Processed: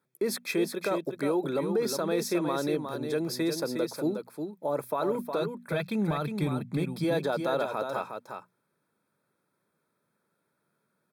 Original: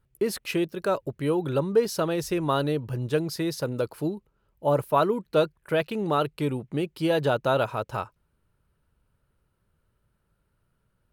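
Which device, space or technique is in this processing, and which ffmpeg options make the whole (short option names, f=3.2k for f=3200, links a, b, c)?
PA system with an anti-feedback notch: -filter_complex "[0:a]highpass=f=180:w=0.5412,highpass=f=180:w=1.3066,asuperstop=centerf=2900:order=20:qfactor=6.4,bandreject=f=60:t=h:w=6,bandreject=f=120:t=h:w=6,bandreject=f=180:t=h:w=6,bandreject=f=240:t=h:w=6,alimiter=limit=-20dB:level=0:latency=1:release=50,asplit=3[a][b][c];[a]afade=t=out:st=5.41:d=0.02[d];[b]asubboost=boost=11.5:cutoff=110,afade=t=in:st=5.41:d=0.02,afade=t=out:st=7.03:d=0.02[e];[c]afade=t=in:st=7.03:d=0.02[f];[d][e][f]amix=inputs=3:normalize=0,aecho=1:1:361:0.473"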